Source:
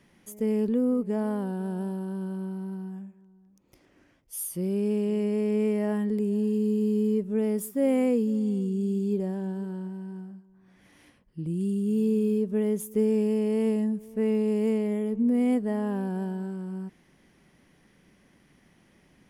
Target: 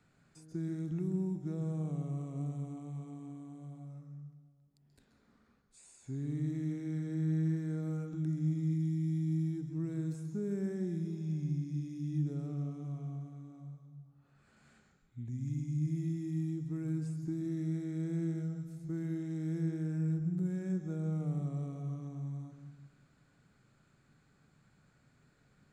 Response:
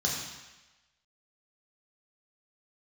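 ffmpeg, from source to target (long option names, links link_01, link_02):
-filter_complex "[0:a]asetrate=33075,aresample=44100,acrossover=split=430|2500[link_01][link_02][link_03];[link_01]acompressor=threshold=-26dB:ratio=4[link_04];[link_02]acompressor=threshold=-43dB:ratio=4[link_05];[link_03]acompressor=threshold=-55dB:ratio=4[link_06];[link_04][link_05][link_06]amix=inputs=3:normalize=0,asplit=2[link_07][link_08];[1:a]atrim=start_sample=2205,adelay=132[link_09];[link_08][link_09]afir=irnorm=-1:irlink=0,volume=-15.5dB[link_10];[link_07][link_10]amix=inputs=2:normalize=0,volume=-8.5dB"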